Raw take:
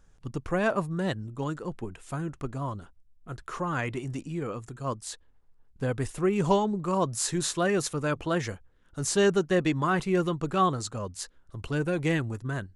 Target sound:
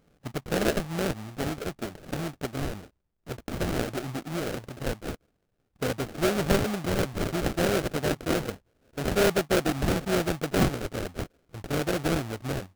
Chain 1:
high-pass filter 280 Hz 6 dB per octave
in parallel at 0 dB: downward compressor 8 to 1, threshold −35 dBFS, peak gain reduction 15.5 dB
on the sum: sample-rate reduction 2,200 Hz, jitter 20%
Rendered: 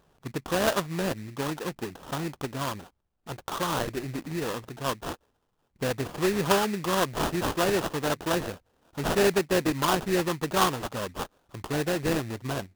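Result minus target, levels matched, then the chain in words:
sample-rate reduction: distortion −9 dB
high-pass filter 280 Hz 6 dB per octave
in parallel at 0 dB: downward compressor 8 to 1, threshold −35 dBFS, peak gain reduction 15.5 dB
on the sum: sample-rate reduction 1,000 Hz, jitter 20%

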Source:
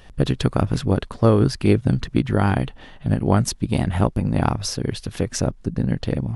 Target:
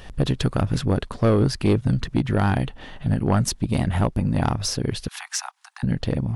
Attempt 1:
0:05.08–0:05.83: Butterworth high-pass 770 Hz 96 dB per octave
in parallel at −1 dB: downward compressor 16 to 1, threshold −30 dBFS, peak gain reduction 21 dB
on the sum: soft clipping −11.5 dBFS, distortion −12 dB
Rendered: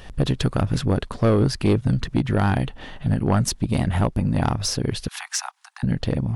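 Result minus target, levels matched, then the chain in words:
downward compressor: peak gain reduction −6.5 dB
0:05.08–0:05.83: Butterworth high-pass 770 Hz 96 dB per octave
in parallel at −1 dB: downward compressor 16 to 1, threshold −37 dBFS, peak gain reduction 27.5 dB
on the sum: soft clipping −11.5 dBFS, distortion −13 dB

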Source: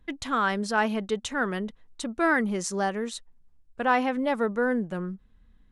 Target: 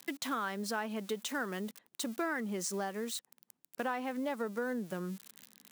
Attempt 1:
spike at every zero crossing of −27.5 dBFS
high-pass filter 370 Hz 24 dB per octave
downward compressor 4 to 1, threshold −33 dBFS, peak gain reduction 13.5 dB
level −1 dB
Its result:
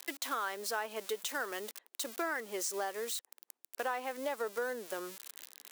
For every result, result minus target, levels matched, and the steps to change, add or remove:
125 Hz band −19.0 dB; spike at every zero crossing: distortion +6 dB
change: high-pass filter 170 Hz 24 dB per octave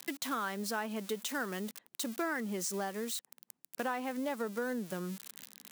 spike at every zero crossing: distortion +6 dB
change: spike at every zero crossing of −33.5 dBFS

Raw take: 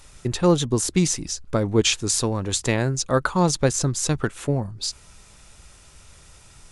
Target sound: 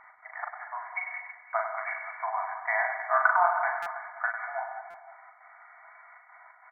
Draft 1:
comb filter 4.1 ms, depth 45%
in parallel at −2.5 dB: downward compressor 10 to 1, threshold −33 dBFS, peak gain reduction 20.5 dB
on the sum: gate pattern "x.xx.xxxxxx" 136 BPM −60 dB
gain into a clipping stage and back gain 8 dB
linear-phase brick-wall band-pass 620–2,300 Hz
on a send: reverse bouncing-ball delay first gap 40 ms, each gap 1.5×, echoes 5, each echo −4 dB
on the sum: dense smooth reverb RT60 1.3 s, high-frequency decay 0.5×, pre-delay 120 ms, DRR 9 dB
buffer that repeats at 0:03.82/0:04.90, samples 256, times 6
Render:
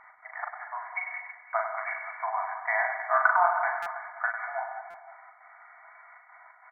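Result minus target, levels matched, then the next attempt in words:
downward compressor: peak gain reduction −7 dB
comb filter 4.1 ms, depth 45%
in parallel at −2.5 dB: downward compressor 10 to 1, threshold −41 dBFS, peak gain reduction 28 dB
on the sum: gate pattern "x.xx.xxxxxx" 136 BPM −60 dB
gain into a clipping stage and back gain 8 dB
linear-phase brick-wall band-pass 620–2,300 Hz
on a send: reverse bouncing-ball delay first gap 40 ms, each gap 1.5×, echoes 5, each echo −4 dB
on the sum: dense smooth reverb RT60 1.3 s, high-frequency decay 0.5×, pre-delay 120 ms, DRR 9 dB
buffer that repeats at 0:03.82/0:04.90, samples 256, times 6

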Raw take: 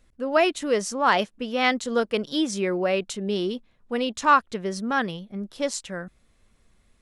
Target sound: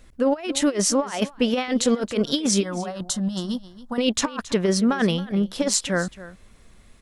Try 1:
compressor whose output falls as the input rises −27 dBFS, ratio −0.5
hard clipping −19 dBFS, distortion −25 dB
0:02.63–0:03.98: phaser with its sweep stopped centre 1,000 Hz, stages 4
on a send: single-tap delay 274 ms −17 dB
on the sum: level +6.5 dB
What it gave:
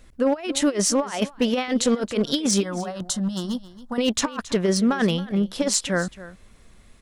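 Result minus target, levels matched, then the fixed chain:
hard clipping: distortion +18 dB
compressor whose output falls as the input rises −27 dBFS, ratio −0.5
hard clipping −12.5 dBFS, distortion −42 dB
0:02.63–0:03.98: phaser with its sweep stopped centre 1,000 Hz, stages 4
on a send: single-tap delay 274 ms −17 dB
on the sum: level +6.5 dB

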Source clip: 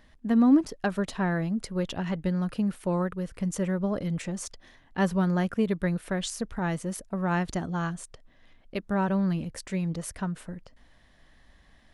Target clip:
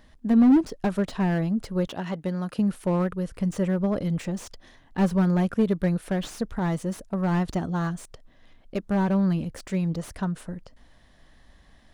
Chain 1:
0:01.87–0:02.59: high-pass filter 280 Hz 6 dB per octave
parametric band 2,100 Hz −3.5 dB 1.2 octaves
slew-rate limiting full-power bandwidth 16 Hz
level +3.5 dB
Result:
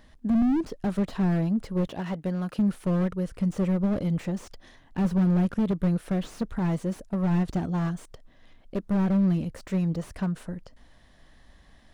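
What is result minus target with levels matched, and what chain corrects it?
slew-rate limiting: distortion +9 dB
0:01.87–0:02.59: high-pass filter 280 Hz 6 dB per octave
parametric band 2,100 Hz −3.5 dB 1.2 octaves
slew-rate limiting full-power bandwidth 38 Hz
level +3.5 dB

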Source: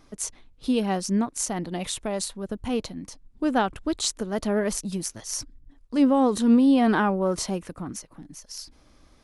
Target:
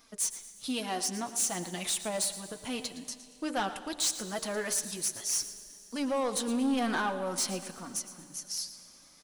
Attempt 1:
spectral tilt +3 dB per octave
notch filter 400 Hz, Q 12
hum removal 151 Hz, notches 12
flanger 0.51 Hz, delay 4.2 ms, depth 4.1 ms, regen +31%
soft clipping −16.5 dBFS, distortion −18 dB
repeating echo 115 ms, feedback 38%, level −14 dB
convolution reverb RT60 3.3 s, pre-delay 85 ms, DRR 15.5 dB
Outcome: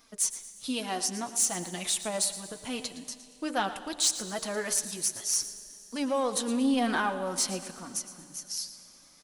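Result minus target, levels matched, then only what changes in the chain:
soft clipping: distortion −8 dB
change: soft clipping −24.5 dBFS, distortion −11 dB

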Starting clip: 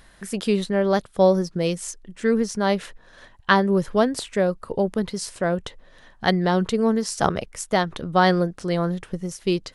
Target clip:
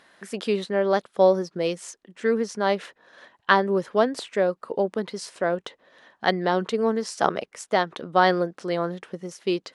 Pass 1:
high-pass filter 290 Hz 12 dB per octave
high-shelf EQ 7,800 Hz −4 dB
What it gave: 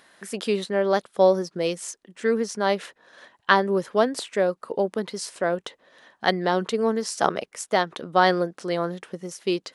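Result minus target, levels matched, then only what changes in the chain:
8,000 Hz band +4.5 dB
change: high-shelf EQ 7,800 Hz −14.5 dB

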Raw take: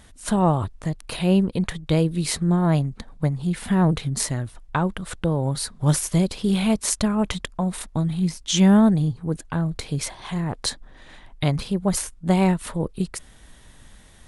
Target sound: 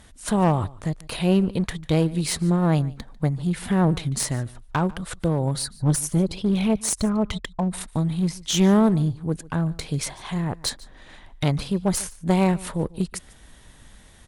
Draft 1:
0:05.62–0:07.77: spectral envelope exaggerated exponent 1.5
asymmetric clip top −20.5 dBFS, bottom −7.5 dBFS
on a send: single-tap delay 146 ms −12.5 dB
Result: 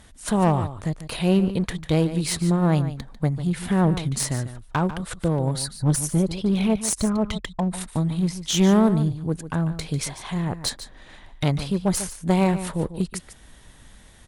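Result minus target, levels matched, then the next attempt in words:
echo-to-direct +9 dB
0:05.62–0:07.77: spectral envelope exaggerated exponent 1.5
asymmetric clip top −20.5 dBFS, bottom −7.5 dBFS
on a send: single-tap delay 146 ms −21.5 dB

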